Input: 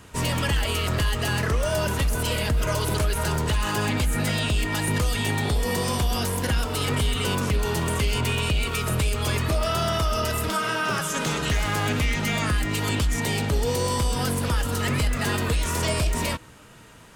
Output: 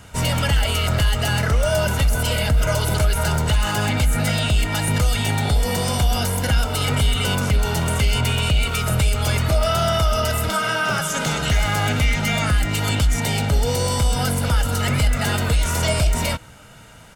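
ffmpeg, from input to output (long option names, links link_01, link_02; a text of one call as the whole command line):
ffmpeg -i in.wav -af "aecho=1:1:1.4:0.46,volume=3dB" out.wav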